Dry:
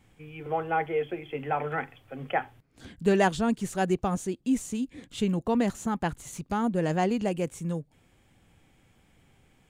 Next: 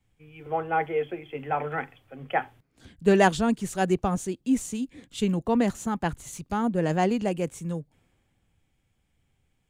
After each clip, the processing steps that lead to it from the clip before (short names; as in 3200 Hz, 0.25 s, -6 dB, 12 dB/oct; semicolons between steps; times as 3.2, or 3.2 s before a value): three-band expander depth 40%; gain +1.5 dB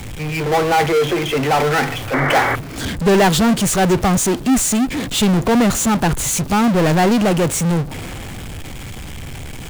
power-law curve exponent 0.35; painted sound noise, 2.13–2.56, 250–2300 Hz -19 dBFS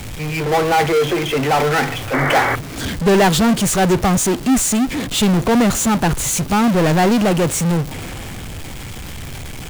crackle 330/s -23 dBFS